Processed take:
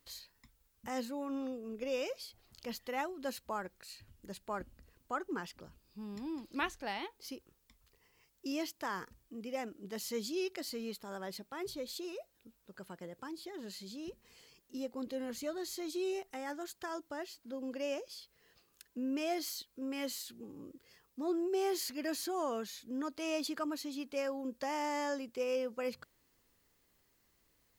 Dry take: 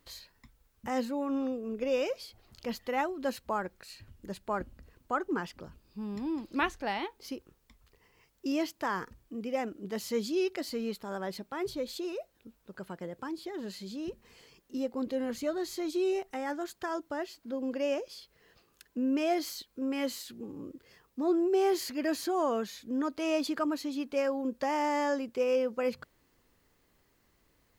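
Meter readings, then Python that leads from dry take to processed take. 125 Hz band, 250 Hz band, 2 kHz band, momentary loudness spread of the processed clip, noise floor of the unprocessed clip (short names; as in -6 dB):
-7.0 dB, -7.0 dB, -5.0 dB, 14 LU, -70 dBFS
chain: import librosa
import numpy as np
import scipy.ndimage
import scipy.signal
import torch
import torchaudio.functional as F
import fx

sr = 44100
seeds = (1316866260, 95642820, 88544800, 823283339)

y = fx.high_shelf(x, sr, hz=3200.0, db=8.0)
y = y * 10.0 ** (-7.0 / 20.0)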